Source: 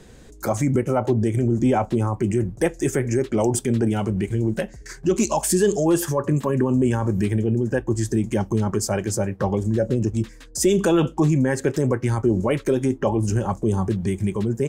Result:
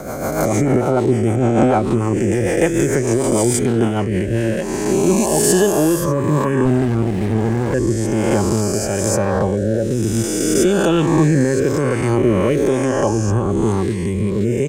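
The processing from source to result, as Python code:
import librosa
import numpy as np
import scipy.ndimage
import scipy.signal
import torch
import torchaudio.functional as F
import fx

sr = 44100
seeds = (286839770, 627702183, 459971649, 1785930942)

y = fx.spec_swells(x, sr, rise_s=1.97)
y = fx.rotary_switch(y, sr, hz=6.7, then_hz=1.1, switch_at_s=3.89)
y = fx.running_max(y, sr, window=33, at=(6.65, 7.74))
y = y * 10.0 ** (3.0 / 20.0)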